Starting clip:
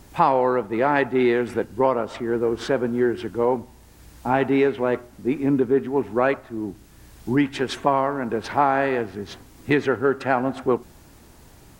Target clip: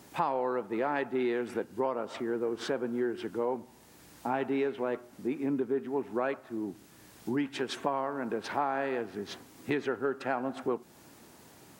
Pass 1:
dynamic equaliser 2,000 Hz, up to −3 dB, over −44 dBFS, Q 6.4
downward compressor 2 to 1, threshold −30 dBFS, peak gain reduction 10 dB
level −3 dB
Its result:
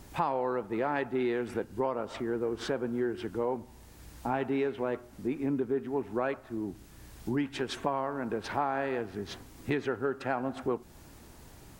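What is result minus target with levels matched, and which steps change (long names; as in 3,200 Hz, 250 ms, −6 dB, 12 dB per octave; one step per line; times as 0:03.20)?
125 Hz band +5.5 dB
add after dynamic equaliser: high-pass filter 170 Hz 12 dB per octave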